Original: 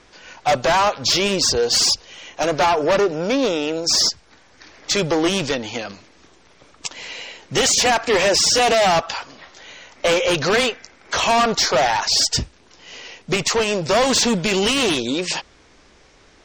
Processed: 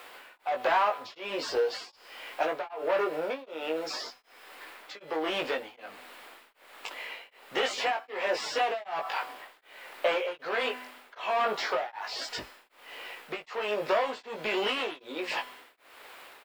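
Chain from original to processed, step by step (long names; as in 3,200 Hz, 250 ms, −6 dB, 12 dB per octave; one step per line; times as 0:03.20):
double-tracking delay 19 ms −3 dB
background noise white −36 dBFS
parametric band 6,100 Hz −6.5 dB 0.27 octaves
tuned comb filter 250 Hz, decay 1.2 s, mix 60%
downward compressor, threshold −24 dBFS, peak gain reduction 6.5 dB
three-way crossover with the lows and the highs turned down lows −24 dB, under 370 Hz, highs −19 dB, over 3,000 Hz
tremolo along a rectified sine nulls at 1.3 Hz
level +4 dB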